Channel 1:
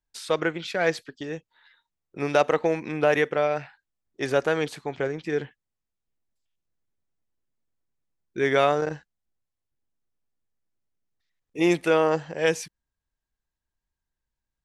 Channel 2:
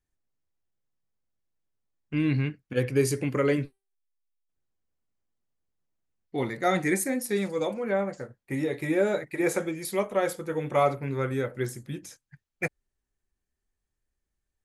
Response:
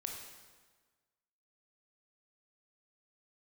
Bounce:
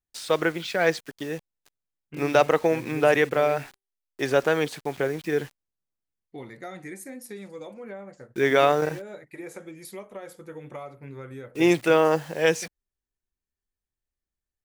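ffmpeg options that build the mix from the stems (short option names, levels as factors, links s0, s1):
-filter_complex "[0:a]highpass=94,acrusher=bits=7:mix=0:aa=0.000001,volume=1.19[s0];[1:a]acompressor=threshold=0.0398:ratio=6,volume=0.422[s1];[s0][s1]amix=inputs=2:normalize=0"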